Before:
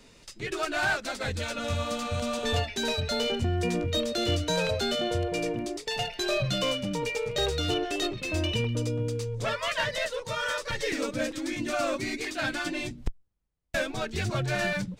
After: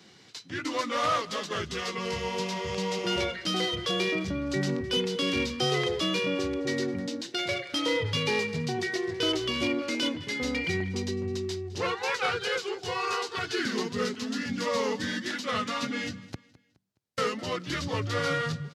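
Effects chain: HPF 130 Hz 24 dB/oct; bell 5800 Hz +4.5 dB 0.69 oct; varispeed -20%; feedback echo 0.209 s, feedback 37%, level -20 dB

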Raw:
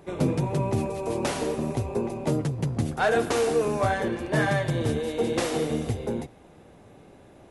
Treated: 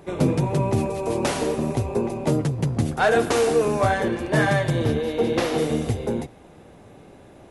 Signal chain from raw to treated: 4.84–5.58 bell 8300 Hz -10.5 dB 0.81 oct; gain +4 dB

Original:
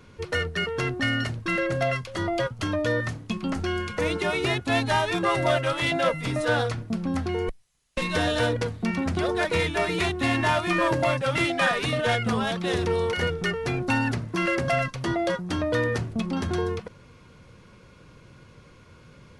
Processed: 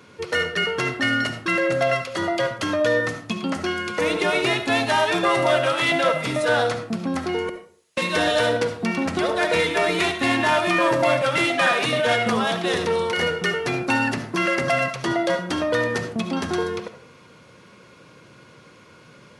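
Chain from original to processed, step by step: HPF 120 Hz 12 dB/oct; low shelf 160 Hz -8.5 dB; in parallel at -2 dB: limiter -17 dBFS, peak gain reduction 7 dB; on the sum: digital reverb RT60 0.47 s, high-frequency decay 0.6×, pre-delay 30 ms, DRR 7.5 dB

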